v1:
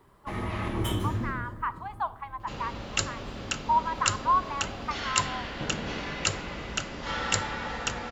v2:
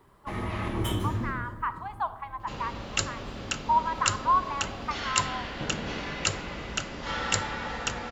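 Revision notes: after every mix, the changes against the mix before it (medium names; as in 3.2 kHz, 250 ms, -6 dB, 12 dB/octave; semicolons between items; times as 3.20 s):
speech: send +6.0 dB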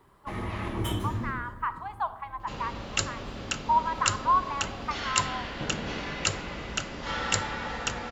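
first sound: send off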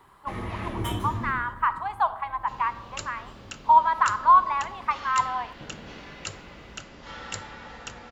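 speech +7.0 dB; second sound -8.5 dB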